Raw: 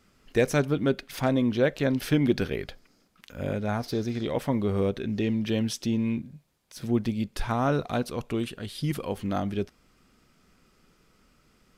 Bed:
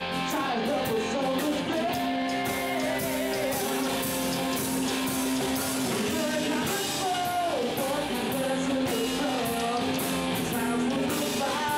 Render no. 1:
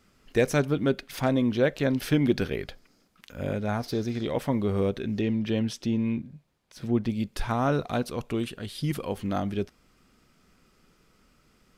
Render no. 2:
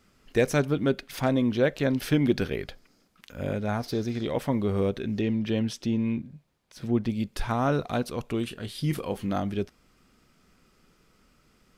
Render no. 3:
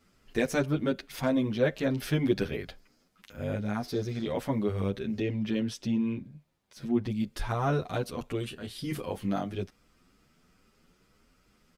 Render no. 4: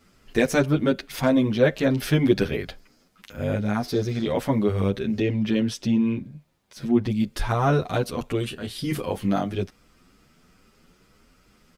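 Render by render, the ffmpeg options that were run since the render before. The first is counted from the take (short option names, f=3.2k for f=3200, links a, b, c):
-filter_complex "[0:a]asettb=1/sr,asplit=3[a][b][c];[a]atrim=end=5.214[d];[b]atrim=start=5.21:end=7.1,asetpts=PTS-STARTPTS,afade=t=in:d=0.004:c=qsin,afade=t=out:st=1.886:d=0.004:c=qsin,highshelf=f=5.6k:g=-10[e];[c]atrim=start=7.096[f];[d][e]acrossfade=d=0.004:c1=hsin:c2=qsin[g];[g][f]acrossfade=d=0.004:c1=qsin:c2=hsin"
-filter_complex "[0:a]asettb=1/sr,asplit=3[a][b][c];[a]atrim=end=8.454[d];[b]atrim=start=8.45:end=9.33,asetpts=PTS-STARTPTS,afade=t=in:d=0.004:c=qsin,afade=t=out:st=0.876:d=0.004:c=qsin,asplit=2[e][f];[f]adelay=26,volume=-11dB[g];[e][g]amix=inputs=2:normalize=0,atrim=end_sample=38808[h];[c]atrim=start=9.326[i];[d][h]acrossfade=d=0.004:c1=hsin:c2=qsin[j];[j][i]acrossfade=d=0.004:c1=qsin:c2=hsin"
-filter_complex "[0:a]asplit=2[a][b];[b]adelay=9.1,afreqshift=2.3[c];[a][c]amix=inputs=2:normalize=1"
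-af "volume=7dB"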